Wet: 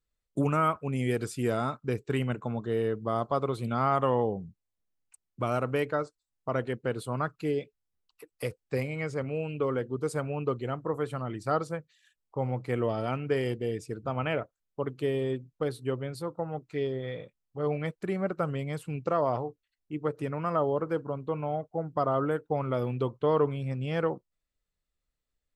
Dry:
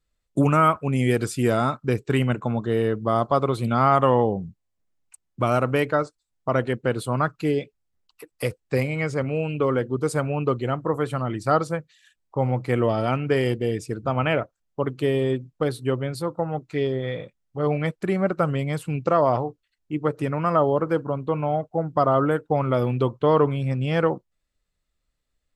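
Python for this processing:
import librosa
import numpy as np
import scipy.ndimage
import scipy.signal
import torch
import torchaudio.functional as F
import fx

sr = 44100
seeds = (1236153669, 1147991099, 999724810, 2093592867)

y = fx.peak_eq(x, sr, hz=440.0, db=3.0, octaves=0.25)
y = F.gain(torch.from_numpy(y), -8.0).numpy()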